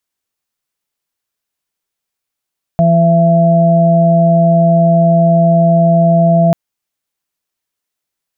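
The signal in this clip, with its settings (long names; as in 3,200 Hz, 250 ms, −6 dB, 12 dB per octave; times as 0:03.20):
steady harmonic partials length 3.74 s, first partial 168 Hz, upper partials −20/−20/−1 dB, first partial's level −8.5 dB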